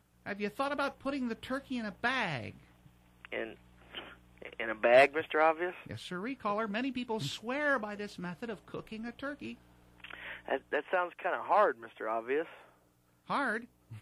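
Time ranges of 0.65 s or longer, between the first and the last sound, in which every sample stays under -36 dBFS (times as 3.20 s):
2.50–3.25 s
12.43–13.30 s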